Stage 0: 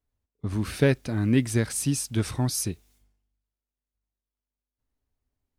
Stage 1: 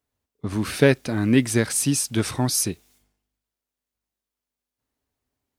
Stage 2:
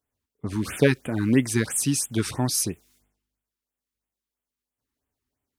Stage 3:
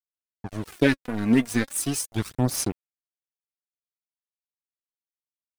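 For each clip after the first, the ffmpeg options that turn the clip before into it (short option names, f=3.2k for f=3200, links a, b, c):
-af "highpass=f=210:p=1,volume=6.5dB"
-af "afftfilt=real='re*(1-between(b*sr/1024,540*pow(5200/540,0.5+0.5*sin(2*PI*3*pts/sr))/1.41,540*pow(5200/540,0.5+0.5*sin(2*PI*3*pts/sr))*1.41))':imag='im*(1-between(b*sr/1024,540*pow(5200/540,0.5+0.5*sin(2*PI*3*pts/sr))/1.41,540*pow(5200/540,0.5+0.5*sin(2*PI*3*pts/sr))*1.41))':win_size=1024:overlap=0.75,volume=-2dB"
-af "aeval=exprs='sgn(val(0))*max(abs(val(0))-0.0282,0)':c=same,aphaser=in_gain=1:out_gain=1:delay=4.4:decay=0.51:speed=0.38:type=sinusoidal"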